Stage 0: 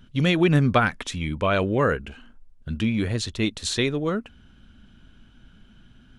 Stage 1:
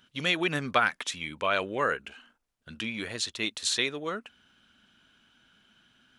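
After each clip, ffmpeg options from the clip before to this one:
ffmpeg -i in.wav -af "highpass=frequency=1100:poles=1" out.wav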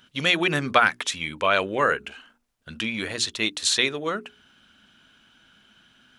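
ffmpeg -i in.wav -af "bandreject=frequency=60:width_type=h:width=6,bandreject=frequency=120:width_type=h:width=6,bandreject=frequency=180:width_type=h:width=6,bandreject=frequency=240:width_type=h:width=6,bandreject=frequency=300:width_type=h:width=6,bandreject=frequency=360:width_type=h:width=6,bandreject=frequency=420:width_type=h:width=6,volume=6dB" out.wav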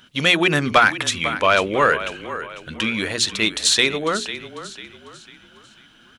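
ffmpeg -i in.wav -filter_complex "[0:a]asplit=5[link_01][link_02][link_03][link_04][link_05];[link_02]adelay=497,afreqshift=-31,volume=-13.5dB[link_06];[link_03]adelay=994,afreqshift=-62,volume=-21.7dB[link_07];[link_04]adelay=1491,afreqshift=-93,volume=-29.9dB[link_08];[link_05]adelay=1988,afreqshift=-124,volume=-38dB[link_09];[link_01][link_06][link_07][link_08][link_09]amix=inputs=5:normalize=0,acontrast=72,volume=-1dB" out.wav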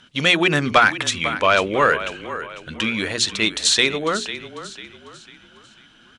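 ffmpeg -i in.wav -af "lowpass=frequency=9600:width=0.5412,lowpass=frequency=9600:width=1.3066" out.wav

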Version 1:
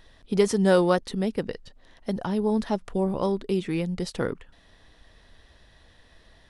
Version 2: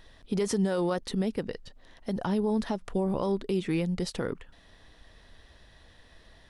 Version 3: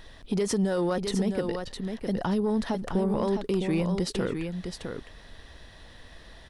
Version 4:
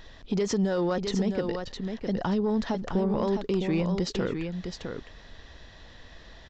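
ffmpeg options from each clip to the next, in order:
ffmpeg -i in.wav -af "alimiter=limit=-19dB:level=0:latency=1:release=88" out.wav
ffmpeg -i in.wav -filter_complex "[0:a]asplit=2[link_01][link_02];[link_02]acompressor=threshold=-36dB:ratio=6,volume=0dB[link_03];[link_01][link_03]amix=inputs=2:normalize=0,aecho=1:1:659:0.447,asoftclip=type=tanh:threshold=-16dB" out.wav
ffmpeg -i in.wav -af "aresample=16000,aresample=44100" out.wav

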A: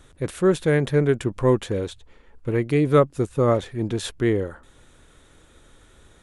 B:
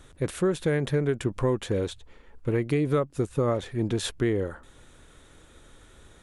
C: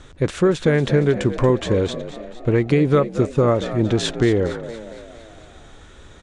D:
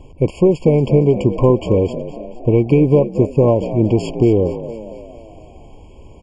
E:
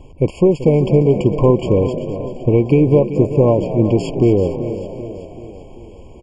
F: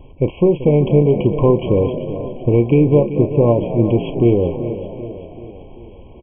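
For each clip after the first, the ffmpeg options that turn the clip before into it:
ffmpeg -i in.wav -af "acompressor=threshold=-21dB:ratio=6" out.wav
ffmpeg -i in.wav -filter_complex "[0:a]lowpass=frequency=7300:width=0.5412,lowpass=frequency=7300:width=1.3066,asplit=2[link_01][link_02];[link_02]asplit=6[link_03][link_04][link_05][link_06][link_07][link_08];[link_03]adelay=231,afreqshift=56,volume=-13dB[link_09];[link_04]adelay=462,afreqshift=112,volume=-18.2dB[link_10];[link_05]adelay=693,afreqshift=168,volume=-23.4dB[link_11];[link_06]adelay=924,afreqshift=224,volume=-28.6dB[link_12];[link_07]adelay=1155,afreqshift=280,volume=-33.8dB[link_13];[link_08]adelay=1386,afreqshift=336,volume=-39dB[link_14];[link_09][link_10][link_11][link_12][link_13][link_14]amix=inputs=6:normalize=0[link_15];[link_01][link_15]amix=inputs=2:normalize=0,volume=8dB" out.wav
ffmpeg -i in.wav -af "highshelf=frequency=2400:gain=-10,aeval=exprs='0.531*(cos(1*acos(clip(val(0)/0.531,-1,1)))-cos(1*PI/2))+0.0106*(cos(6*acos(clip(val(0)/0.531,-1,1)))-cos(6*PI/2))':channel_layout=same,afftfilt=real='re*eq(mod(floor(b*sr/1024/1100),2),0)':imag='im*eq(mod(floor(b*sr/1024/1100),2),0)':win_size=1024:overlap=0.75,volume=4.5dB" out.wav
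ffmpeg -i in.wav -af "aecho=1:1:386|772|1158|1544|1930:0.237|0.126|0.0666|0.0353|0.0187" out.wav
ffmpeg -i in.wav -filter_complex "[0:a]asplit=2[link_01][link_02];[link_02]adelay=34,volume=-12.5dB[link_03];[link_01][link_03]amix=inputs=2:normalize=0,aresample=8000,aresample=44100,volume=-1dB" out.wav

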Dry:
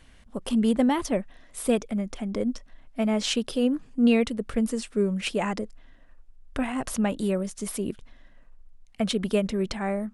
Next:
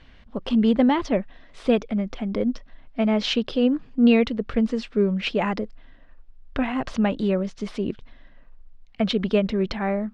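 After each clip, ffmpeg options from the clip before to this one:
ffmpeg -i in.wav -af "lowpass=frequency=4600:width=0.5412,lowpass=frequency=4600:width=1.3066,volume=3.5dB" out.wav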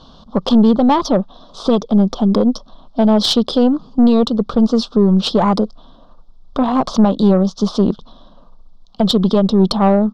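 ffmpeg -i in.wav -af "alimiter=limit=-15.5dB:level=0:latency=1:release=275,firequalizer=gain_entry='entry(120,0);entry(170,13);entry(290,6);entry(580,10);entry(1200,13);entry(2000,-28);entry(3400,12);entry(5300,14);entry(7500,5);entry(11000,-1)':delay=0.05:min_phase=1,aeval=exprs='(tanh(3.16*val(0)+0.4)-tanh(0.4))/3.16':channel_layout=same,volume=5dB" out.wav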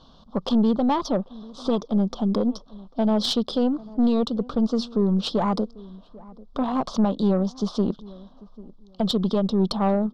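ffmpeg -i in.wav -filter_complex "[0:a]asplit=2[link_01][link_02];[link_02]adelay=794,lowpass=frequency=850:poles=1,volume=-20.5dB,asplit=2[link_03][link_04];[link_04]adelay=794,lowpass=frequency=850:poles=1,volume=0.26[link_05];[link_01][link_03][link_05]amix=inputs=3:normalize=0,volume=-9dB" out.wav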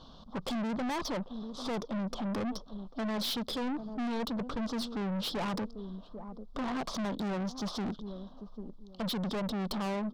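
ffmpeg -i in.wav -af "aeval=exprs='(tanh(39.8*val(0)+0.2)-tanh(0.2))/39.8':channel_layout=same" out.wav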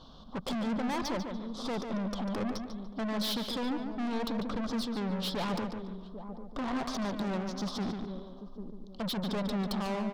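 ffmpeg -i in.wav -filter_complex "[0:a]asplit=2[link_01][link_02];[link_02]adelay=145,lowpass=frequency=3700:poles=1,volume=-6dB,asplit=2[link_03][link_04];[link_04]adelay=145,lowpass=frequency=3700:poles=1,volume=0.37,asplit=2[link_05][link_06];[link_06]adelay=145,lowpass=frequency=3700:poles=1,volume=0.37,asplit=2[link_07][link_08];[link_08]adelay=145,lowpass=frequency=3700:poles=1,volume=0.37[link_09];[link_01][link_03][link_05][link_07][link_09]amix=inputs=5:normalize=0" out.wav

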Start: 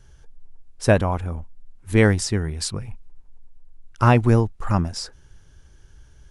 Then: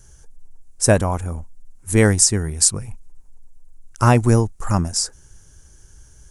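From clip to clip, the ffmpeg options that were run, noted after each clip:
ffmpeg -i in.wav -af "highshelf=frequency=5200:width_type=q:width=1.5:gain=12,volume=1.5dB" out.wav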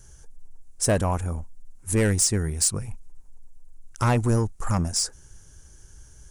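ffmpeg -i in.wav -filter_complex "[0:a]asplit=2[link_01][link_02];[link_02]alimiter=limit=-11dB:level=0:latency=1:release=108,volume=-2dB[link_03];[link_01][link_03]amix=inputs=2:normalize=0,asoftclip=type=tanh:threshold=-8dB,volume=-6.5dB" out.wav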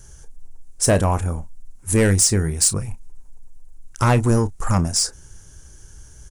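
ffmpeg -i in.wav -filter_complex "[0:a]asplit=2[link_01][link_02];[link_02]adelay=31,volume=-13dB[link_03];[link_01][link_03]amix=inputs=2:normalize=0,volume=5dB" out.wav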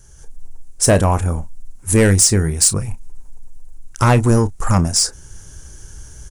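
ffmpeg -i in.wav -af "dynaudnorm=framelen=150:gausssize=3:maxgain=9dB,volume=-2.5dB" out.wav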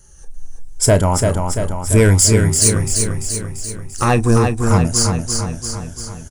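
ffmpeg -i in.wav -filter_complex "[0:a]afftfilt=real='re*pow(10,9/40*sin(2*PI*(1.7*log(max(b,1)*sr/1024/100)/log(2)-(-0.79)*(pts-256)/sr)))':imag='im*pow(10,9/40*sin(2*PI*(1.7*log(max(b,1)*sr/1024/100)/log(2)-(-0.79)*(pts-256)/sr)))':win_size=1024:overlap=0.75,asplit=2[link_01][link_02];[link_02]aecho=0:1:341|682|1023|1364|1705|2046|2387|2728:0.562|0.326|0.189|0.11|0.0636|0.0369|0.0214|0.0124[link_03];[link_01][link_03]amix=inputs=2:normalize=0,volume=-1.5dB" out.wav

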